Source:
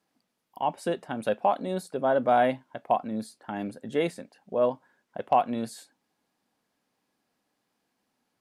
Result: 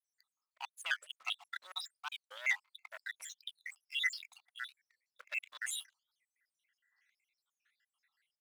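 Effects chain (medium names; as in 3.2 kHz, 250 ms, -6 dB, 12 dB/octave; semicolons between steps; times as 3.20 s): random holes in the spectrogram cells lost 81%; low-pass 10 kHz; peaking EQ 2 kHz +15 dB 0.26 oct; reverse; compression 5:1, threshold -40 dBFS, peak gain reduction 16 dB; reverse; waveshaping leveller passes 2; high-pass 1.3 kHz 24 dB/octave; warped record 45 rpm, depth 250 cents; trim +6 dB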